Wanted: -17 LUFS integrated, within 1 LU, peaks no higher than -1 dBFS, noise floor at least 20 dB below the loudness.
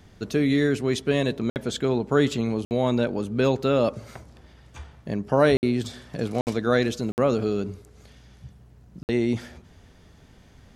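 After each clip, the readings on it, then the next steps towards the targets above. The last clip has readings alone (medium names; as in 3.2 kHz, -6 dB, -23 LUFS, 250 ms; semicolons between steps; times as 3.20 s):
dropouts 6; longest dropout 59 ms; loudness -24.5 LUFS; peak level -7.0 dBFS; loudness target -17.0 LUFS
-> interpolate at 1.50/2.65/5.57/6.41/7.12/9.03 s, 59 ms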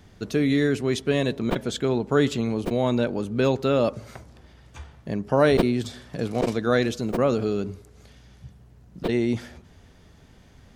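dropouts 0; loudness -24.5 LUFS; peak level -6.0 dBFS; loudness target -17.0 LUFS
-> trim +7.5 dB; peak limiter -1 dBFS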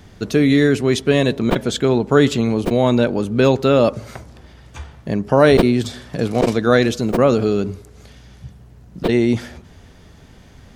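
loudness -17.0 LUFS; peak level -1.0 dBFS; noise floor -45 dBFS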